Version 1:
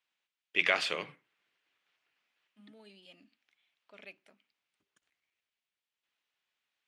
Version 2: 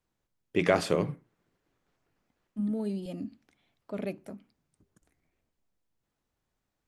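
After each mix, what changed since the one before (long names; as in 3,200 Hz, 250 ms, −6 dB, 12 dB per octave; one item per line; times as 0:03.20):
first voice −9.0 dB
master: remove resonant band-pass 2,800 Hz, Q 1.9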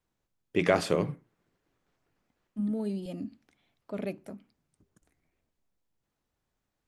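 nothing changed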